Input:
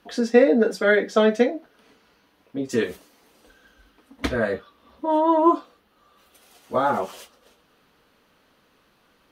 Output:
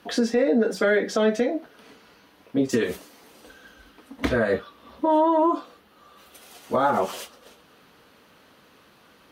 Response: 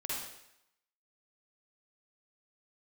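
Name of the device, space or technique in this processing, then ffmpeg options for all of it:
podcast mastering chain: -af "highpass=64,deesser=0.85,acompressor=threshold=-22dB:ratio=2.5,alimiter=limit=-18.5dB:level=0:latency=1:release=117,volume=7dB" -ar 48000 -c:a libmp3lame -b:a 96k

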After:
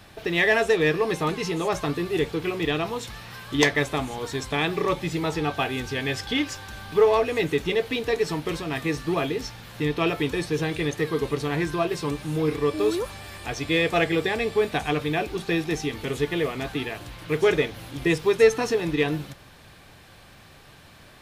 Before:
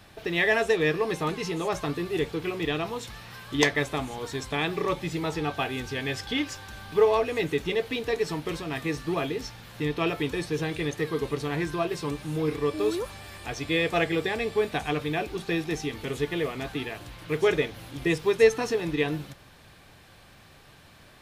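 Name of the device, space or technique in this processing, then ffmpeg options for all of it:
parallel distortion: -filter_complex "[0:a]asplit=2[link_01][link_02];[link_02]asoftclip=type=hard:threshold=-19dB,volume=-7dB[link_03];[link_01][link_03]amix=inputs=2:normalize=0"

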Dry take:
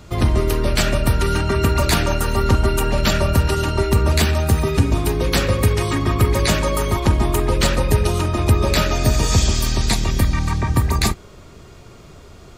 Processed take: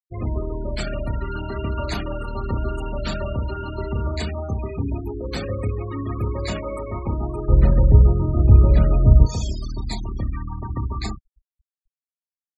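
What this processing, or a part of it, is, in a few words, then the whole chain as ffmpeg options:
slapback doubling: -filter_complex "[0:a]asplit=3[link_01][link_02][link_03];[link_02]adelay=29,volume=-5dB[link_04];[link_03]adelay=61,volume=-8.5dB[link_05];[link_01][link_04][link_05]amix=inputs=3:normalize=0,asplit=3[link_06][link_07][link_08];[link_06]afade=type=out:start_time=7.48:duration=0.02[link_09];[link_07]aemphasis=mode=reproduction:type=riaa,afade=type=in:start_time=7.48:duration=0.02,afade=type=out:start_time=9.25:duration=0.02[link_10];[link_08]afade=type=in:start_time=9.25:duration=0.02[link_11];[link_09][link_10][link_11]amix=inputs=3:normalize=0,afftfilt=real='re*gte(hypot(re,im),0.158)':imag='im*gte(hypot(re,im),0.158)':win_size=1024:overlap=0.75,volume=-10.5dB"

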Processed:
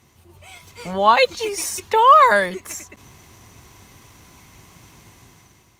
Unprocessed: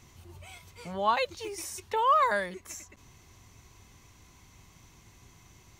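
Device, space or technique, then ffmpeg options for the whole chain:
video call: -filter_complex "[0:a]asettb=1/sr,asplit=3[link_01][link_02][link_03];[link_01]atrim=end=1.184[link_04];[link_02]atrim=start=1.18:end=1.69,asetpts=PTS-STARTPTS,afade=type=in:duration=0.004:curve=qsin,afade=type=out:start_time=0.506:duration=0.004:curve=qsin,aecho=1:1:4.2:0.53,atrim=end_sample=22491[link_05];[link_03]atrim=start=1.686[link_06];[link_04][link_05]acrossfade=duration=0.004:curve1=hsin:curve2=qsin[link_07];[link_07][link_06]acrossfade=duration=0.004:curve1=qsin:curve2=hsin,highpass=frequency=120:poles=1,dynaudnorm=framelen=190:gausssize=7:maxgain=10dB,volume=3dB" -ar 48000 -c:a libopus -b:a 32k

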